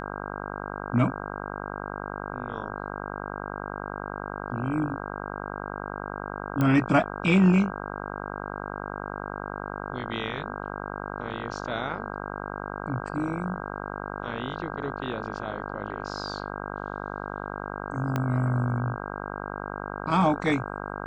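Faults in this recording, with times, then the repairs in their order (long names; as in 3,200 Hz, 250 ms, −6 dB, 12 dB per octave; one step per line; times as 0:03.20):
mains buzz 50 Hz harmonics 32 −35 dBFS
0:06.61: click −14 dBFS
0:18.16: click −14 dBFS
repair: click removal
hum removal 50 Hz, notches 32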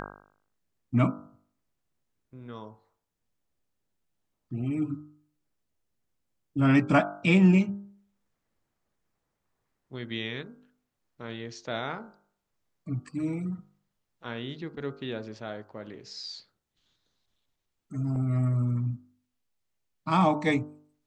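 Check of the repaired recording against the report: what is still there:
0:06.61: click
0:18.16: click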